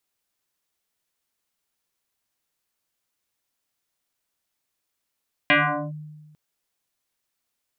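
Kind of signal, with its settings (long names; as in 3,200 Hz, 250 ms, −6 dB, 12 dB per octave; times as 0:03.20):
two-operator FM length 0.85 s, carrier 152 Hz, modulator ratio 2.91, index 6.1, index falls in 0.42 s linear, decay 1.36 s, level −12.5 dB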